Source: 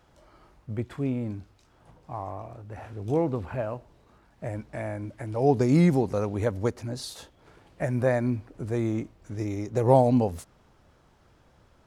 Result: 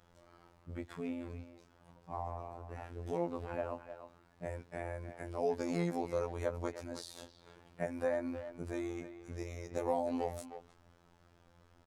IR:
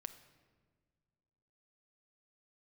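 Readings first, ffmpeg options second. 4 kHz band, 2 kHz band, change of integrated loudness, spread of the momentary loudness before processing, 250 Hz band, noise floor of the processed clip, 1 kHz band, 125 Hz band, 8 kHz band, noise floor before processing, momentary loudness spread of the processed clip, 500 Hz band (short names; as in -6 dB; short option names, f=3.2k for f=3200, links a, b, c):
-9.0 dB, -8.5 dB, -12.5 dB, 19 LU, -13.5 dB, -66 dBFS, -10.0 dB, -17.5 dB, -8.0 dB, -61 dBFS, 15 LU, -10.5 dB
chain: -filter_complex "[0:a]acrossover=split=490|1100[a][b][c];[a]acompressor=threshold=-35dB:ratio=4[d];[b]acompressor=threshold=-28dB:ratio=4[e];[c]acompressor=threshold=-42dB:ratio=4[f];[d][e][f]amix=inputs=3:normalize=0,asplit=2[g][h];[h]adelay=310,highpass=300,lowpass=3.4k,asoftclip=type=hard:threshold=-24.5dB,volume=-10dB[i];[g][i]amix=inputs=2:normalize=0,afftfilt=real='hypot(re,im)*cos(PI*b)':imag='0':win_size=2048:overlap=0.75,volume=-2dB"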